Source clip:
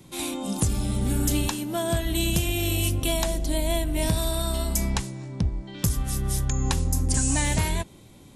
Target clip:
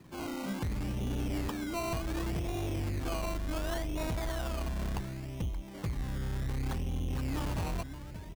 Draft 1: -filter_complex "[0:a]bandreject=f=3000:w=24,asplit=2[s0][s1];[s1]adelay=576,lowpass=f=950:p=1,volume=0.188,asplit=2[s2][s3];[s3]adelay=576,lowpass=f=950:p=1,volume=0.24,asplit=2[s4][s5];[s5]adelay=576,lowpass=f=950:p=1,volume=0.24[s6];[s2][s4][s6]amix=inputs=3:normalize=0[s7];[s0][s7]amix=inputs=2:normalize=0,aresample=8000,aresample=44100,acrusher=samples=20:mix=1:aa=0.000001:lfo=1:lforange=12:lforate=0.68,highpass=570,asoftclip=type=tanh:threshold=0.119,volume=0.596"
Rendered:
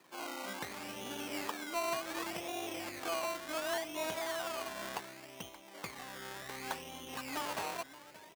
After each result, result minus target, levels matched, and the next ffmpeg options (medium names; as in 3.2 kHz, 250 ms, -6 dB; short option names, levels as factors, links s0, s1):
saturation: distortion -9 dB; 500 Hz band +3.5 dB
-filter_complex "[0:a]bandreject=f=3000:w=24,asplit=2[s0][s1];[s1]adelay=576,lowpass=f=950:p=1,volume=0.188,asplit=2[s2][s3];[s3]adelay=576,lowpass=f=950:p=1,volume=0.24,asplit=2[s4][s5];[s5]adelay=576,lowpass=f=950:p=1,volume=0.24[s6];[s2][s4][s6]amix=inputs=3:normalize=0[s7];[s0][s7]amix=inputs=2:normalize=0,aresample=8000,aresample=44100,acrusher=samples=20:mix=1:aa=0.000001:lfo=1:lforange=12:lforate=0.68,highpass=570,asoftclip=type=tanh:threshold=0.0562,volume=0.596"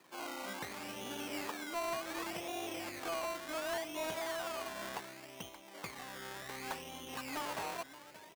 500 Hz band +3.5 dB
-filter_complex "[0:a]bandreject=f=3000:w=24,asplit=2[s0][s1];[s1]adelay=576,lowpass=f=950:p=1,volume=0.188,asplit=2[s2][s3];[s3]adelay=576,lowpass=f=950:p=1,volume=0.24,asplit=2[s4][s5];[s5]adelay=576,lowpass=f=950:p=1,volume=0.24[s6];[s2][s4][s6]amix=inputs=3:normalize=0[s7];[s0][s7]amix=inputs=2:normalize=0,aresample=8000,aresample=44100,acrusher=samples=20:mix=1:aa=0.000001:lfo=1:lforange=12:lforate=0.68,asoftclip=type=tanh:threshold=0.0562,volume=0.596"